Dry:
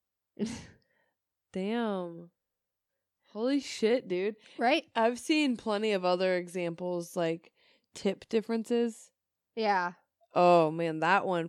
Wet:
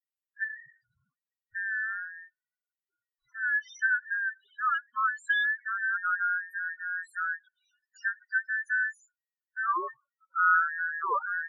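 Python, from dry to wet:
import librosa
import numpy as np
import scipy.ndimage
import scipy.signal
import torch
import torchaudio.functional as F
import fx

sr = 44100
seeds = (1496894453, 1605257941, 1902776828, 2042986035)

y = fx.band_invert(x, sr, width_hz=2000)
y = fx.spec_topn(y, sr, count=4)
y = F.gain(torch.from_numpy(y), 1.0).numpy()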